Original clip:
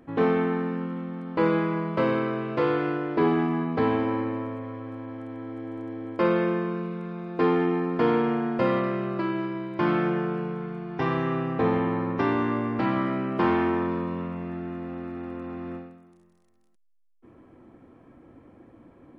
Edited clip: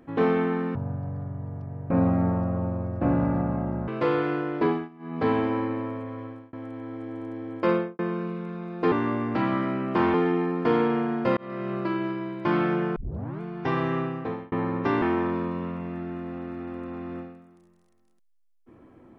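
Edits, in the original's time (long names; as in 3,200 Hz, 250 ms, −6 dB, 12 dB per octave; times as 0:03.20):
0:00.75–0:02.44: play speed 54%
0:03.19–0:03.81: duck −23 dB, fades 0.26 s
0:04.81–0:05.09: fade out
0:06.25–0:06.55: fade out and dull
0:08.71–0:09.08: fade in
0:10.30: tape start 0.45 s
0:11.31–0:11.86: fade out
0:12.36–0:13.58: move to 0:07.48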